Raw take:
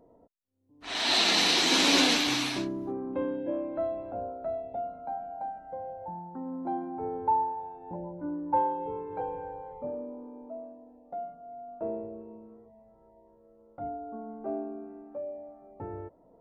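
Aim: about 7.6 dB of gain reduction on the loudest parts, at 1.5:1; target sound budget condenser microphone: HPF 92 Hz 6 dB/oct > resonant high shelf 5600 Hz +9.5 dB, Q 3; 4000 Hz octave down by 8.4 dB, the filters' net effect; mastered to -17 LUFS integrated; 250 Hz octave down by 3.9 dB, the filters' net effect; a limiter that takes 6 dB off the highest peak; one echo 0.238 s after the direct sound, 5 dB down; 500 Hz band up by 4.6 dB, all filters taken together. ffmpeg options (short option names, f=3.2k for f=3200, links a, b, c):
-af "equalizer=f=250:t=o:g=-7.5,equalizer=f=500:t=o:g=8,equalizer=f=4k:t=o:g=-5.5,acompressor=threshold=-41dB:ratio=1.5,alimiter=level_in=1.5dB:limit=-24dB:level=0:latency=1,volume=-1.5dB,highpass=f=92:p=1,highshelf=f=5.6k:t=q:w=3:g=9.5,aecho=1:1:238:0.562,volume=18.5dB"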